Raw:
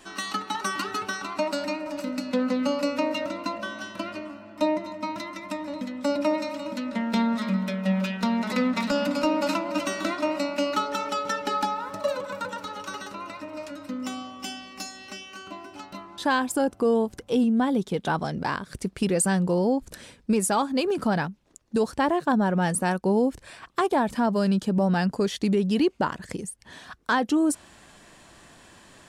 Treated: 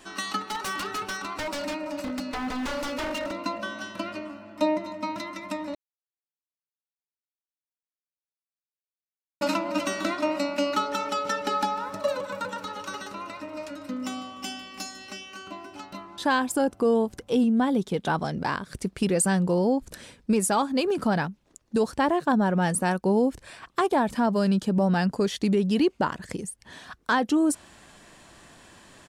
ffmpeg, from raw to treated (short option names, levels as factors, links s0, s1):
-filter_complex "[0:a]asettb=1/sr,asplit=3[s0][s1][s2];[s0]atrim=end=0.474[s3];[s1]atrim=start=0.47:end=3.45,asetpts=PTS-STARTPTS,afade=t=in:d=0.004:c=qsin,afade=t=out:st=2.976:d=0.004:c=qsin,aeval=exprs='0.0531*(abs(mod(val(0)/0.0531+3,4)-2)-1)':c=same[s4];[s2]atrim=start=3.446[s5];[s3][s4]acrossfade=d=0.004:c1=hsin:c2=qsin[s6];[s6][s5]acrossfade=d=0.004:c1=qsin:c2=hsin,asplit=3[s7][s8][s9];[s7]afade=t=out:st=11.21:d=0.02[s10];[s8]aecho=1:1:149|298|447|596:0.126|0.0604|0.029|0.0139,afade=t=in:st=11.21:d=0.02,afade=t=out:st=15.11:d=0.02[s11];[s9]afade=t=in:st=15.11:d=0.02[s12];[s10][s11][s12]amix=inputs=3:normalize=0,asplit=3[s13][s14][s15];[s13]atrim=end=5.75,asetpts=PTS-STARTPTS,afade=t=out:st=5.746:d=0.004:c=hsin[s16];[s14]atrim=start=5.75:end=9.41,asetpts=PTS-STARTPTS,volume=0[s17];[s15]atrim=start=9.41,asetpts=PTS-STARTPTS,afade=t=in:d=0.004:c=hsin[s18];[s16][s17][s18]concat=n=3:v=0:a=1"